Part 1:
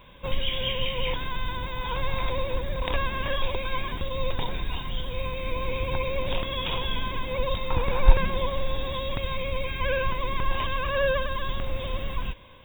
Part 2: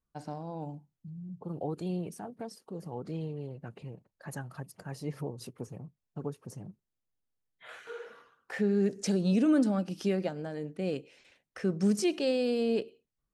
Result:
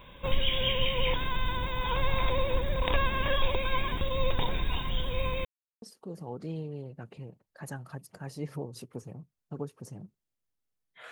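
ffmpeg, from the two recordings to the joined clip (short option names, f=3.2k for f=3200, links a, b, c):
-filter_complex "[0:a]apad=whole_dur=11.11,atrim=end=11.11,asplit=2[a][b];[a]atrim=end=5.45,asetpts=PTS-STARTPTS,afade=t=out:st=5.446:d=0.004:c=hsin[c];[b]atrim=start=5.45:end=5.82,asetpts=PTS-STARTPTS,volume=0[d];[1:a]atrim=start=2.47:end=7.76,asetpts=PTS-STARTPTS,afade=t=in:d=0.004:c=hsin[e];[c][d][e]concat=n=3:v=0:a=1"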